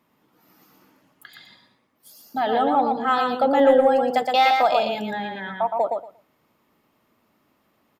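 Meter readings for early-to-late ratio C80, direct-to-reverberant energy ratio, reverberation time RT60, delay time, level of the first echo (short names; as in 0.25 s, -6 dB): none, none, none, 0.117 s, -4.0 dB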